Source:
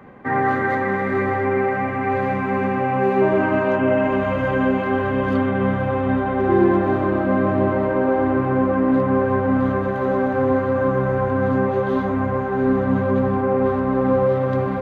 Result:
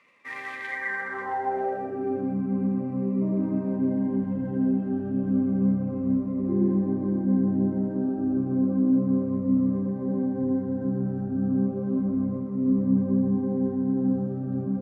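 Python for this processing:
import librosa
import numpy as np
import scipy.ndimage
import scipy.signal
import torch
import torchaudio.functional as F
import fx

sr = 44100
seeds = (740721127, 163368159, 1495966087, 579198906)

y = fx.cvsd(x, sr, bps=64000)
y = fx.filter_sweep_bandpass(y, sr, from_hz=2600.0, to_hz=210.0, start_s=0.65, end_s=2.4, q=3.0)
y = fx.notch_cascade(y, sr, direction='falling', hz=0.32)
y = y * librosa.db_to_amplitude(2.0)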